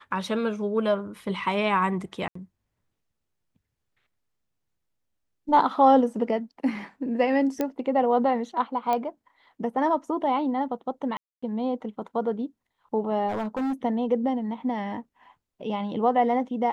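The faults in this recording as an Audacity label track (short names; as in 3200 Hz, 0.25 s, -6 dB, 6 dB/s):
2.280000	2.350000	gap 74 ms
7.610000	7.610000	pop -13 dBFS
8.930000	8.930000	pop -14 dBFS
11.170000	11.430000	gap 0.255 s
13.280000	13.730000	clipped -24.5 dBFS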